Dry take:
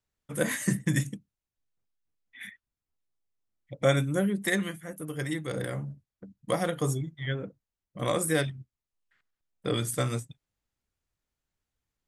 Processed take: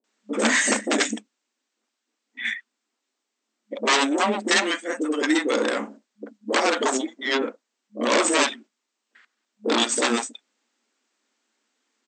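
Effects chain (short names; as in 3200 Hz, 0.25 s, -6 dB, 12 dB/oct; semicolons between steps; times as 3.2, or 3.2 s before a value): sine folder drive 16 dB, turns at -10 dBFS; bands offset in time lows, highs 40 ms, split 590 Hz; FFT band-pass 210–8400 Hz; gain -3.5 dB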